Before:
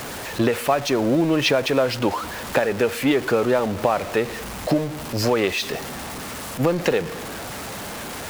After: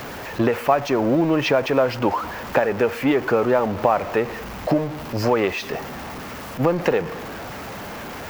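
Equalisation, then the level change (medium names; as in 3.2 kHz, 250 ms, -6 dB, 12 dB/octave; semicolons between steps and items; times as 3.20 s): dynamic bell 3.8 kHz, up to -6 dB, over -44 dBFS, Q 2.4; peaking EQ 9.3 kHz -12.5 dB 1.1 oct; dynamic bell 910 Hz, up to +4 dB, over -36 dBFS, Q 1.4; 0.0 dB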